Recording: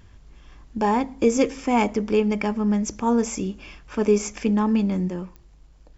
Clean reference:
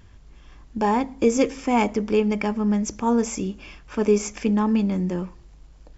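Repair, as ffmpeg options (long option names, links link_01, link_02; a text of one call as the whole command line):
ffmpeg -i in.wav -af "adeclick=threshold=4,asetnsamples=nb_out_samples=441:pad=0,asendcmd='5.08 volume volume 3.5dB',volume=0dB" out.wav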